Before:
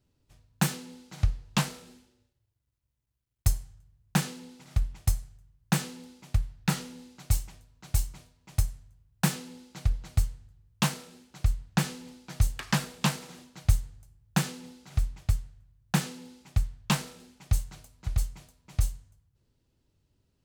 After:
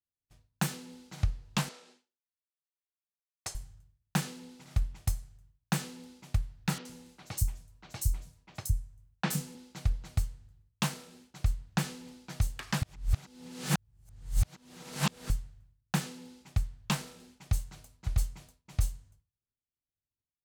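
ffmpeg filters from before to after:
ffmpeg -i in.wav -filter_complex "[0:a]asettb=1/sr,asplit=3[link_01][link_02][link_03];[link_01]atrim=end=1.694[link_04];[link_02]atrim=start=1.69:end=3.55,asetpts=PTS-STARTPTS,afade=type=in:duration=0.004:curve=qsin,afade=type=out:start_time=1.856:duration=0.004:curve=qsin,highpass=430,lowpass=7000[link_05];[link_03]atrim=start=3.546[link_06];[link_04][link_05]acrossfade=duration=0.004:curve1=hsin:curve2=qsin[link_07];[link_07][link_06]acrossfade=duration=0.004:curve1=qsin:curve2=hsin,asettb=1/sr,asplit=3[link_08][link_09][link_10];[link_08]atrim=end=6.784[link_11];[link_09]atrim=start=6.78:end=9.55,asetpts=PTS-STARTPTS,afade=type=in:duration=0.004:curve=qsin,afade=type=out:start_time=2.766:duration=0.004:curve=qsin,acrossover=split=160|4700[link_12][link_13][link_14];[link_14]adelay=70[link_15];[link_12]adelay=110[link_16];[link_16][link_13][link_15]amix=inputs=3:normalize=0,atrim=end_sample=122157[link_17];[link_10]atrim=start=9.546[link_18];[link_11][link_17]acrossfade=duration=0.004:curve1=hsin:curve2=qsin[link_19];[link_19][link_18]acrossfade=duration=0.004:curve1=qsin:curve2=hsin,asplit=3[link_20][link_21][link_22];[link_20]atrim=end=12.822[link_23];[link_21]atrim=start=12.818:end=15.302,asetpts=PTS-STARTPTS,areverse[link_24];[link_22]atrim=start=15.298[link_25];[link_23][link_24]acrossfade=duration=0.004:curve1=hsin:curve2=hsin[link_26];[link_26][link_25]acrossfade=duration=0.004:curve1=hsin:curve2=hsin,agate=range=-33dB:threshold=-54dB:ratio=3:detection=peak,alimiter=limit=-15.5dB:level=0:latency=1:release=437,volume=-1dB" out.wav

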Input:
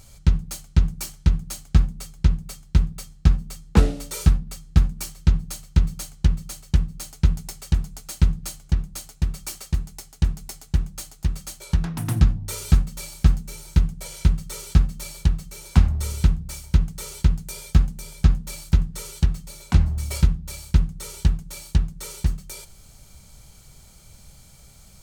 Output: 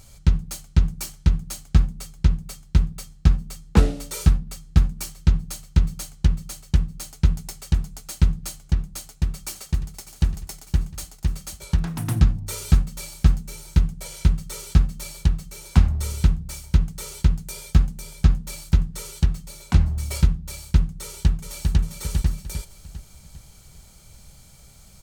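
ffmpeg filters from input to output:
ffmpeg -i in.wav -filter_complex "[0:a]asplit=2[link_01][link_02];[link_02]afade=type=in:start_time=8.87:duration=0.01,afade=type=out:start_time=9.99:duration=0.01,aecho=0:1:600|1200|1800|2400|3000|3600:0.211349|0.126809|0.0760856|0.0456514|0.0273908|0.0164345[link_03];[link_01][link_03]amix=inputs=2:normalize=0,asplit=2[link_04][link_05];[link_05]afade=type=in:start_time=21.02:duration=0.01,afade=type=out:start_time=21.81:duration=0.01,aecho=0:1:400|800|1200|1600|2000|2400:0.595662|0.268048|0.120622|0.0542797|0.0244259|0.0109916[link_06];[link_04][link_06]amix=inputs=2:normalize=0" out.wav

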